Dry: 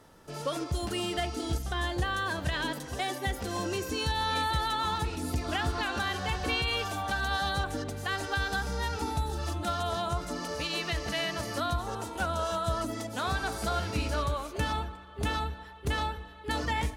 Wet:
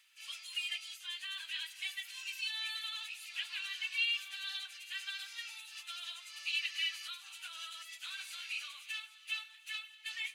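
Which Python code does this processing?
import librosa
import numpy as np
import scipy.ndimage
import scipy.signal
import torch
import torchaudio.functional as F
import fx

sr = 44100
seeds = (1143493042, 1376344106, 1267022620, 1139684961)

p1 = fx.notch(x, sr, hz=5500.0, q=12.0)
p2 = fx.rider(p1, sr, range_db=4, speed_s=2.0)
p3 = p1 + (p2 * librosa.db_to_amplitude(1.0))
p4 = fx.quant_dither(p3, sr, seeds[0], bits=12, dither='none')
p5 = fx.stretch_vocoder_free(p4, sr, factor=0.61)
p6 = fx.ladder_highpass(p5, sr, hz=2300.0, resonance_pct=65)
y = fx.echo_wet_highpass(p6, sr, ms=800, feedback_pct=54, hz=3500.0, wet_db=-16)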